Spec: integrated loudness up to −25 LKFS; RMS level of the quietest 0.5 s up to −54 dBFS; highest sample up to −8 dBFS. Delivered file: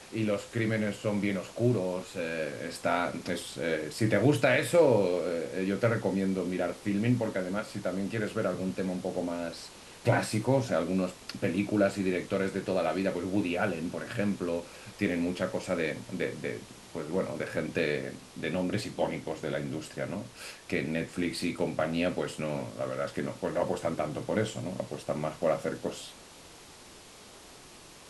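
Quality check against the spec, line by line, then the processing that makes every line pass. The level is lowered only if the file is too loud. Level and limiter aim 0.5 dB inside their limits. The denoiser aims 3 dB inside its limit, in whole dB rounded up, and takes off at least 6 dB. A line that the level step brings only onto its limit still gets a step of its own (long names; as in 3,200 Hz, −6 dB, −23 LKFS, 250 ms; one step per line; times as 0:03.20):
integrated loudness −31.0 LKFS: in spec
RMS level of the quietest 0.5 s −51 dBFS: out of spec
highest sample −11.0 dBFS: in spec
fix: broadband denoise 6 dB, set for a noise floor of −51 dBFS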